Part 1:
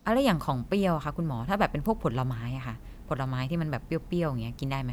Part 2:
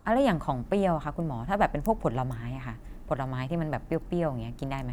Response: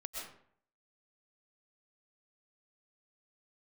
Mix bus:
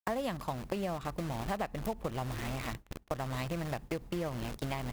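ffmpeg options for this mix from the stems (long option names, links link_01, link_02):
-filter_complex "[0:a]agate=range=-33dB:threshold=-34dB:ratio=3:detection=peak,volume=0dB[link_01];[1:a]bandreject=frequency=50:width_type=h:width=6,bandreject=frequency=100:width_type=h:width=6,bandreject=frequency=150:width_type=h:width=6,bandreject=frequency=200:width_type=h:width=6,acompressor=threshold=-33dB:ratio=3,acrusher=bits=5:mix=0:aa=0.000001,volume=-1,adelay=1,volume=-1dB[link_02];[link_01][link_02]amix=inputs=2:normalize=0,agate=range=-33dB:threshold=-39dB:ratio=3:detection=peak,acompressor=threshold=-32dB:ratio=6"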